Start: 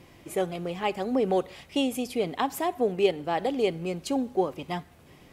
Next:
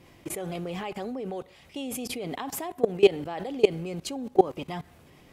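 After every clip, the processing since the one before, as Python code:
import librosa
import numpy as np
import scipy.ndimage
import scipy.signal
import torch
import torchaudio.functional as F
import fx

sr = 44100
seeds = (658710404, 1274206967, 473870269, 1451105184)

y = fx.level_steps(x, sr, step_db=21)
y = y * librosa.db_to_amplitude(8.5)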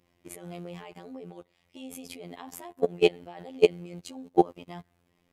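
y = fx.robotise(x, sr, hz=87.2)
y = fx.upward_expand(y, sr, threshold_db=-50.0, expansion=1.5)
y = y * librosa.db_to_amplitude(3.0)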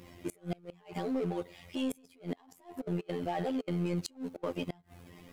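y = fx.over_compress(x, sr, threshold_db=-40.0, ratio=-0.5)
y = fx.power_curve(y, sr, exponent=0.7)
y = fx.gate_flip(y, sr, shuts_db=-18.0, range_db=-28)
y = y * librosa.db_to_amplitude(-3.0)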